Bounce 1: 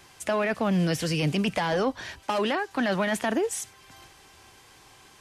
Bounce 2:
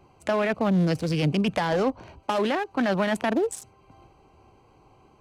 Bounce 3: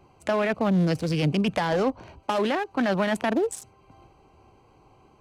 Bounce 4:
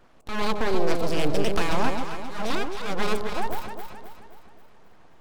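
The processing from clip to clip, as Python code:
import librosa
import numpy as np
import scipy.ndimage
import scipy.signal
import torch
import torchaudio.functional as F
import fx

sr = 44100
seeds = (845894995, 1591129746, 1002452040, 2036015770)

y1 = fx.wiener(x, sr, points=25)
y1 = y1 * 10.0 ** (2.5 / 20.0)
y2 = y1
y3 = fx.auto_swell(y2, sr, attack_ms=208.0)
y3 = np.abs(y3)
y3 = fx.echo_alternate(y3, sr, ms=133, hz=900.0, feedback_pct=68, wet_db=-3.0)
y3 = y3 * 10.0 ** (1.5 / 20.0)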